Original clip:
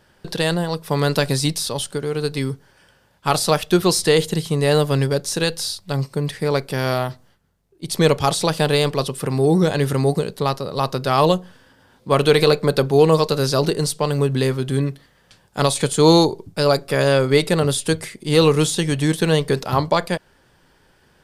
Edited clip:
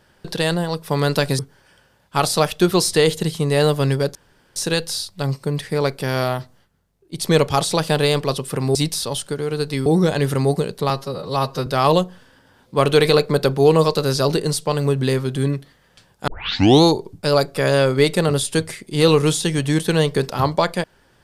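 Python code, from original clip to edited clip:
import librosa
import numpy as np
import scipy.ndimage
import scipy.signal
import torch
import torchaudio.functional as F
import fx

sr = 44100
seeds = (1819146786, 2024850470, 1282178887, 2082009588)

y = fx.edit(x, sr, fx.move(start_s=1.39, length_s=1.11, to_s=9.45),
    fx.insert_room_tone(at_s=5.26, length_s=0.41),
    fx.stretch_span(start_s=10.49, length_s=0.51, factor=1.5),
    fx.tape_start(start_s=15.61, length_s=0.55), tone=tone)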